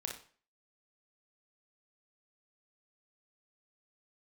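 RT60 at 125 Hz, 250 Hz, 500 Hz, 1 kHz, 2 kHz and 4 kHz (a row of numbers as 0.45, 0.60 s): 0.40, 0.45, 0.45, 0.45, 0.40, 0.40 s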